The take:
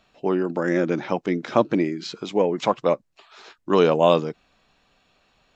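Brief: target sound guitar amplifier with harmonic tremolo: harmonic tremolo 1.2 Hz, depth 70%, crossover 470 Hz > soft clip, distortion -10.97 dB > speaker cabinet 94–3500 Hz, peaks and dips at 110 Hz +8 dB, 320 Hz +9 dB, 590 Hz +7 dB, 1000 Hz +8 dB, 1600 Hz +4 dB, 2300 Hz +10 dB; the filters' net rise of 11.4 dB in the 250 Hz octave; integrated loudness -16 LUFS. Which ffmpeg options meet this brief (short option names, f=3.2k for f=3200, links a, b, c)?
-filter_complex "[0:a]equalizer=f=250:t=o:g=8.5,acrossover=split=470[a][b];[a]aeval=exprs='val(0)*(1-0.7/2+0.7/2*cos(2*PI*1.2*n/s))':c=same[c];[b]aeval=exprs='val(0)*(1-0.7/2-0.7/2*cos(2*PI*1.2*n/s))':c=same[d];[c][d]amix=inputs=2:normalize=0,asoftclip=threshold=-16.5dB,highpass=94,equalizer=f=110:t=q:w=4:g=8,equalizer=f=320:t=q:w=4:g=9,equalizer=f=590:t=q:w=4:g=7,equalizer=f=1k:t=q:w=4:g=8,equalizer=f=1.6k:t=q:w=4:g=4,equalizer=f=2.3k:t=q:w=4:g=10,lowpass=f=3.5k:w=0.5412,lowpass=f=3.5k:w=1.3066,volume=5dB"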